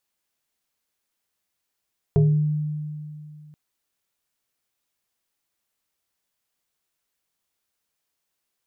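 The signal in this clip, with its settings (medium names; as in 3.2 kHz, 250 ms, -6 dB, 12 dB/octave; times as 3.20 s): FM tone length 1.38 s, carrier 151 Hz, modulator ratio 1.74, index 1, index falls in 0.51 s exponential, decay 2.58 s, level -12.5 dB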